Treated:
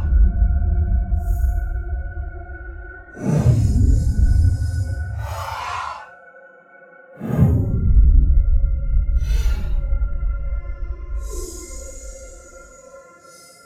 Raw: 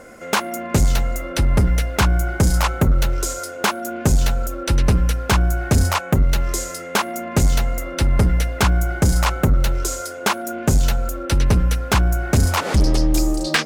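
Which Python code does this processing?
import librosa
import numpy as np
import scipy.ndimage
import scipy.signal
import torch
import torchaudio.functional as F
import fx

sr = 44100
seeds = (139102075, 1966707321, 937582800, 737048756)

y = fx.paulstretch(x, sr, seeds[0], factor=9.7, window_s=0.05, from_s=5.37)
y = fx.spectral_expand(y, sr, expansion=1.5)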